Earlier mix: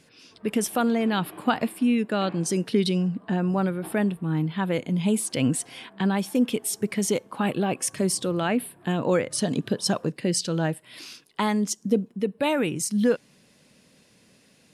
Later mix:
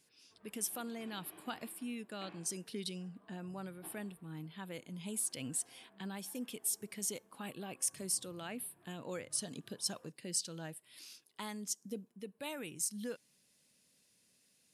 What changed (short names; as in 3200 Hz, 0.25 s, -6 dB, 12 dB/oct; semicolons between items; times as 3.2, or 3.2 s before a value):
speech -7.0 dB; master: add pre-emphasis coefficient 0.8